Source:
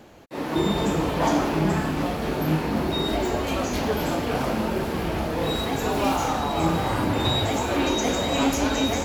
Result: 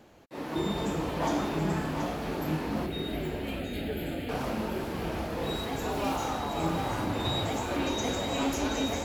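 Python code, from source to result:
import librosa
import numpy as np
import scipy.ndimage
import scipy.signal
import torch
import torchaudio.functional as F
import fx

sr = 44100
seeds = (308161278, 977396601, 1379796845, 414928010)

p1 = fx.fixed_phaser(x, sr, hz=2500.0, stages=4, at=(2.86, 4.29))
p2 = p1 + fx.echo_single(p1, sr, ms=728, db=-8.5, dry=0)
y = p2 * 10.0 ** (-7.5 / 20.0)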